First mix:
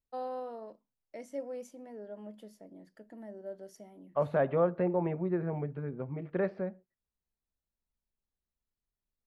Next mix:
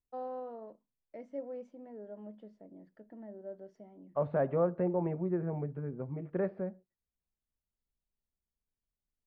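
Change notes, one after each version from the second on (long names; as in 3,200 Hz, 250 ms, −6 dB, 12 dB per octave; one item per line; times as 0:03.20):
master: add head-to-tape spacing loss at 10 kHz 37 dB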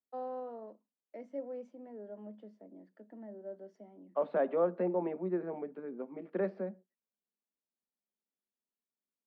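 second voice: remove low-pass filter 2,400 Hz 12 dB per octave
master: add Butterworth high-pass 190 Hz 72 dB per octave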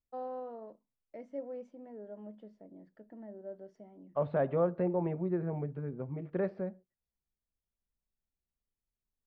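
master: remove Butterworth high-pass 190 Hz 72 dB per octave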